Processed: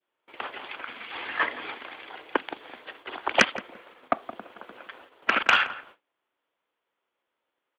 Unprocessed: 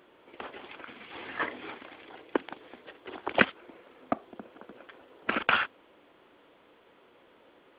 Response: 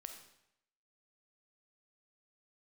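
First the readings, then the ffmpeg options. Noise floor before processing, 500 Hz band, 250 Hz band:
-61 dBFS, +2.0 dB, -1.5 dB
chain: -filter_complex "[0:a]acrossover=split=670[s0][s1];[s1]aeval=exprs='0.708*sin(PI/2*2.24*val(0)/0.708)':c=same[s2];[s0][s2]amix=inputs=2:normalize=0,adynamicequalizer=threshold=0.0178:dfrequency=1300:dqfactor=0.93:tfrequency=1300:tqfactor=0.93:attack=5:release=100:ratio=0.375:range=4:mode=cutabove:tftype=bell,asplit=2[s3][s4];[s4]adelay=170,lowpass=f=1100:p=1,volume=0.251,asplit=2[s5][s6];[s6]adelay=170,lowpass=f=1100:p=1,volume=0.21,asplit=2[s7][s8];[s8]adelay=170,lowpass=f=1100:p=1,volume=0.21[s9];[s3][s5][s7][s9]amix=inputs=4:normalize=0,agate=range=0.0398:threshold=0.00447:ratio=16:detection=peak,volume=0.75"

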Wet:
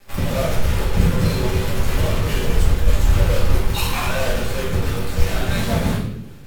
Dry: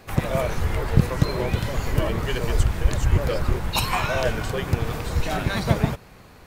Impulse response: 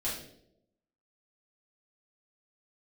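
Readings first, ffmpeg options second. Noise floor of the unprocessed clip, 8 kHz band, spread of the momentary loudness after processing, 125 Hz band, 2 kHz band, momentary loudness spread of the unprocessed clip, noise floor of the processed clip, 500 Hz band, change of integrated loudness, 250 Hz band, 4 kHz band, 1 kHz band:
-48 dBFS, +5.0 dB, 5 LU, +3.0 dB, +2.0 dB, 4 LU, -34 dBFS, +2.0 dB, +3.0 dB, +3.5 dB, +3.5 dB, +0.5 dB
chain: -filter_complex "[0:a]acrusher=bits=5:dc=4:mix=0:aa=0.000001[s0];[1:a]atrim=start_sample=2205,asetrate=34839,aresample=44100[s1];[s0][s1]afir=irnorm=-1:irlink=0,volume=0.501"

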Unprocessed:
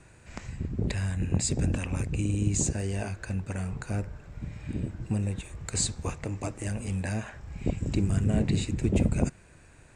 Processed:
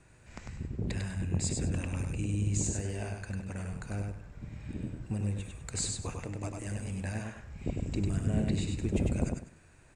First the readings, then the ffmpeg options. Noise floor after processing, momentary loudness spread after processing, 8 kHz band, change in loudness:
-58 dBFS, 12 LU, -4.5 dB, -4.5 dB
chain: -af "aecho=1:1:99|198|297:0.631|0.145|0.0334,volume=0.501"

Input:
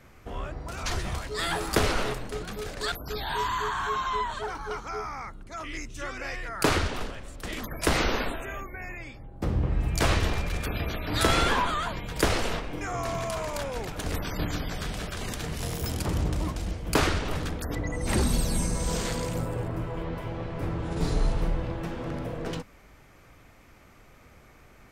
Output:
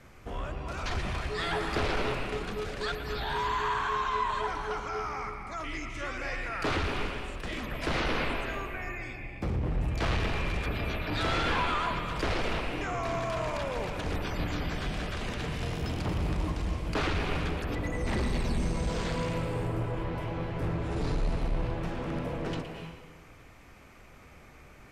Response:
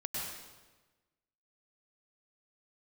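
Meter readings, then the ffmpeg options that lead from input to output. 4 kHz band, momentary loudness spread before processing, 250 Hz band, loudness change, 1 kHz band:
-4.0 dB, 12 LU, -2.5 dB, -2.5 dB, -1.5 dB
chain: -filter_complex "[0:a]asoftclip=type=tanh:threshold=0.0562,asplit=2[s0][s1];[s1]equalizer=f=400:t=o:w=0.67:g=5,equalizer=f=1000:t=o:w=0.67:g=4,equalizer=f=2500:t=o:w=0.67:g=10,equalizer=f=6300:t=o:w=0.67:g=-7[s2];[1:a]atrim=start_sample=2205,adelay=116[s3];[s2][s3]afir=irnorm=-1:irlink=0,volume=0.282[s4];[s0][s4]amix=inputs=2:normalize=0,acrossover=split=4700[s5][s6];[s6]acompressor=threshold=0.002:ratio=4:attack=1:release=60[s7];[s5][s7]amix=inputs=2:normalize=0,lowpass=12000"

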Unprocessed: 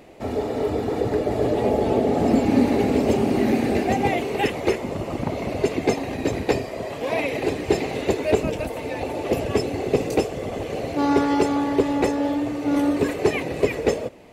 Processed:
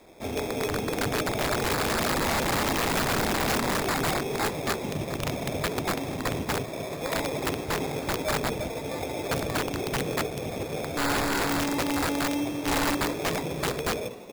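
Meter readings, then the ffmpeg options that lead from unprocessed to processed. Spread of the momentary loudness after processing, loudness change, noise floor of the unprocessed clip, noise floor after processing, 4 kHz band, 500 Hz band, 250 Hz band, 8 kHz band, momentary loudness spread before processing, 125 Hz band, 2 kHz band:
7 LU, -5.0 dB, -32 dBFS, -36 dBFS, +4.0 dB, -8.0 dB, -8.5 dB, +6.5 dB, 8 LU, -3.5 dB, +1.5 dB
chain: -filter_complex "[0:a]acrusher=samples=15:mix=1:aa=0.000001,adynamicequalizer=threshold=0.00891:dfrequency=150:dqfactor=2.6:tfrequency=150:tqfactor=2.6:attack=5:release=100:ratio=0.375:range=3.5:mode=boostabove:tftype=bell,bandreject=f=60:t=h:w=6,bandreject=f=120:t=h:w=6,bandreject=f=180:t=h:w=6,bandreject=f=240:t=h:w=6,bandreject=f=300:t=h:w=6,bandreject=f=360:t=h:w=6,bandreject=f=420:t=h:w=6,bandreject=f=480:t=h:w=6,bandreject=f=540:t=h:w=6,asplit=7[s0][s1][s2][s3][s4][s5][s6];[s1]adelay=428,afreqshift=45,volume=0.141[s7];[s2]adelay=856,afreqshift=90,volume=0.0832[s8];[s3]adelay=1284,afreqshift=135,volume=0.049[s9];[s4]adelay=1712,afreqshift=180,volume=0.0292[s10];[s5]adelay=2140,afreqshift=225,volume=0.0172[s11];[s6]adelay=2568,afreqshift=270,volume=0.0101[s12];[s0][s7][s8][s9][s10][s11][s12]amix=inputs=7:normalize=0,aeval=exprs='(mod(6.31*val(0)+1,2)-1)/6.31':c=same,volume=0.596"

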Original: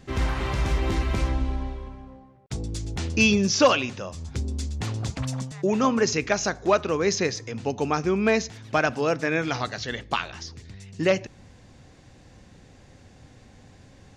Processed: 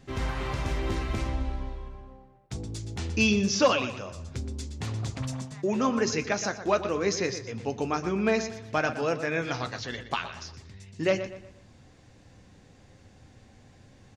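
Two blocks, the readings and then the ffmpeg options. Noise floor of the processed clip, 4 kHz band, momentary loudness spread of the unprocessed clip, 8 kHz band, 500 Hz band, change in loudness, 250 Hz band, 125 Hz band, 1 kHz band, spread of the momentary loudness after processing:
-56 dBFS, -4.0 dB, 16 LU, -4.0 dB, -3.5 dB, -4.0 dB, -3.5 dB, -4.0 dB, -4.0 dB, 15 LU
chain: -filter_complex "[0:a]flanger=delay=7.2:depth=3:regen=-62:speed=0.2:shape=triangular,asplit=2[s0][s1];[s1]adelay=120,lowpass=f=4000:p=1,volume=0.282,asplit=2[s2][s3];[s3]adelay=120,lowpass=f=4000:p=1,volume=0.39,asplit=2[s4][s5];[s5]adelay=120,lowpass=f=4000:p=1,volume=0.39,asplit=2[s6][s7];[s7]adelay=120,lowpass=f=4000:p=1,volume=0.39[s8];[s0][s2][s4][s6][s8]amix=inputs=5:normalize=0"

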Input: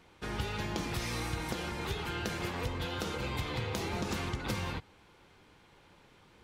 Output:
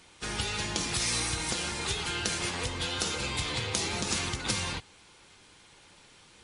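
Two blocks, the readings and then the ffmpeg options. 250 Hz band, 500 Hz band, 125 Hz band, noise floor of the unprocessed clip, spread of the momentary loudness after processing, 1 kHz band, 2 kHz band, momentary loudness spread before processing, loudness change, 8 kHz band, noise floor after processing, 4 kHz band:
0.0 dB, 0.0 dB, -0.5 dB, -61 dBFS, 4 LU, +2.0 dB, +5.0 dB, 2 LU, +5.5 dB, +14.5 dB, -57 dBFS, +9.5 dB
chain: -af "crystalizer=i=5:c=0" -ar 24000 -c:a libmp3lame -b:a 40k

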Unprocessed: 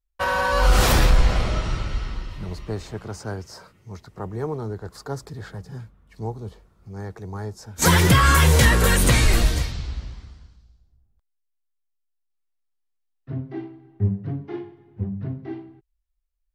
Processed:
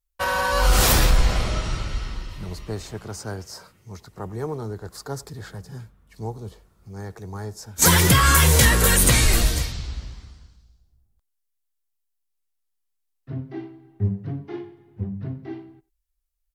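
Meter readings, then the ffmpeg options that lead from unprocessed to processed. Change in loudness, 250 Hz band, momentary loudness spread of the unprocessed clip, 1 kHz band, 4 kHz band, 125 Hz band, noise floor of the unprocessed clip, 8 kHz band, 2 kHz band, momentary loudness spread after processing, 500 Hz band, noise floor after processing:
+2.0 dB, -1.5 dB, 21 LU, -1.0 dB, +2.0 dB, -1.5 dB, -74 dBFS, +5.5 dB, 0.0 dB, 22 LU, -1.5 dB, -76 dBFS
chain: -filter_complex "[0:a]aemphasis=mode=production:type=cd,asplit=2[s0][s1];[s1]adelay=90,highpass=300,lowpass=3400,asoftclip=type=hard:threshold=0.266,volume=0.1[s2];[s0][s2]amix=inputs=2:normalize=0,volume=0.891"

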